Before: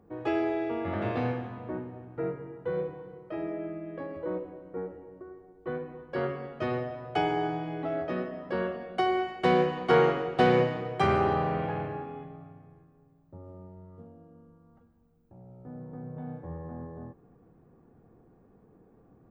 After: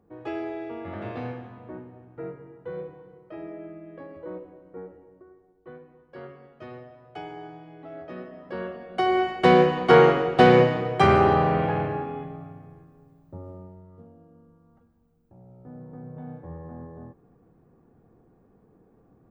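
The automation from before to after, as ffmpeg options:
-af "volume=14dB,afade=t=out:st=4.9:d=0.91:silence=0.446684,afade=t=in:st=7.79:d=1.09:silence=0.316228,afade=t=in:st=8.88:d=0.37:silence=0.398107,afade=t=out:st=13.36:d=0.47:silence=0.446684"

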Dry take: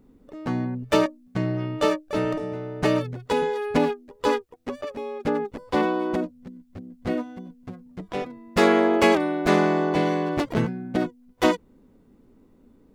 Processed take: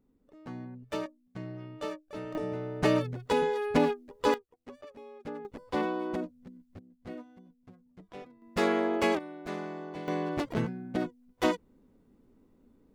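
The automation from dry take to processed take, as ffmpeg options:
-af "asetnsamples=n=441:p=0,asendcmd='2.35 volume volume -3.5dB;4.34 volume volume -15.5dB;5.45 volume volume -8dB;6.79 volume volume -16dB;8.42 volume volume -9dB;9.19 volume volume -18dB;10.08 volume volume -7dB',volume=-15dB"

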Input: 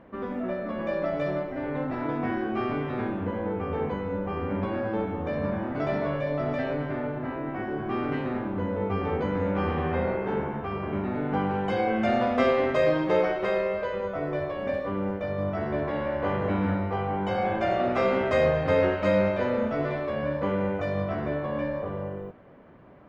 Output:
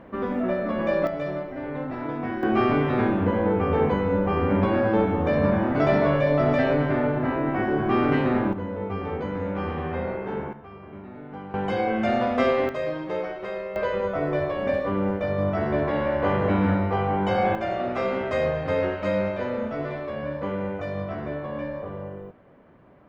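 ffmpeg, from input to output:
-af "asetnsamples=n=441:p=0,asendcmd='1.07 volume volume -1dB;2.43 volume volume 7.5dB;8.53 volume volume -2dB;10.53 volume volume -11.5dB;11.54 volume volume 1dB;12.69 volume volume -6dB;13.76 volume volume 4.5dB;17.55 volume volume -2dB',volume=5.5dB"

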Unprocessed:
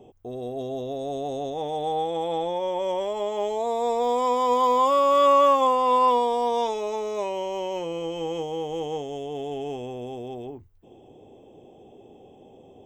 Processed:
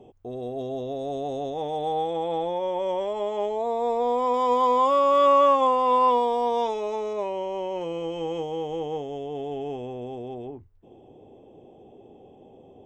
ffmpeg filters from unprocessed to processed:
-af "asetnsamples=n=441:p=0,asendcmd='2.13 lowpass f 2900;3.46 lowpass f 1800;4.34 lowpass f 3300;7.13 lowpass f 1800;7.81 lowpass f 3400;8.76 lowpass f 2200',lowpass=f=4.4k:p=1"

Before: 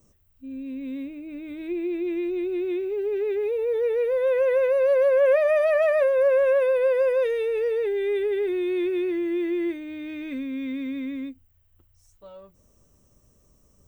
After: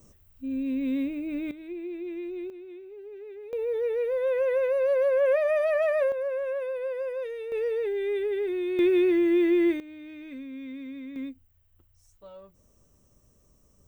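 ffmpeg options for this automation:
-af "asetnsamples=n=441:p=0,asendcmd='1.51 volume volume -8dB;2.5 volume volume -16.5dB;3.53 volume volume -4dB;6.12 volume volume -10.5dB;7.52 volume volume -3.5dB;8.79 volume volume 4dB;9.8 volume volume -8.5dB;11.16 volume volume -2dB',volume=5dB"

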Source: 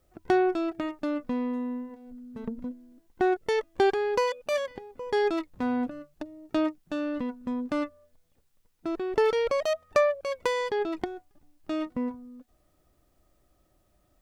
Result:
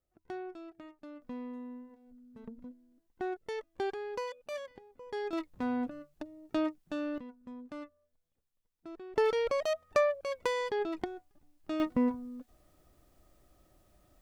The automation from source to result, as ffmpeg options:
-af "asetnsamples=n=441:p=0,asendcmd='1.22 volume volume -12dB;5.33 volume volume -5dB;7.18 volume volume -15dB;9.16 volume volume -4.5dB;11.8 volume volume 2.5dB',volume=-18.5dB"

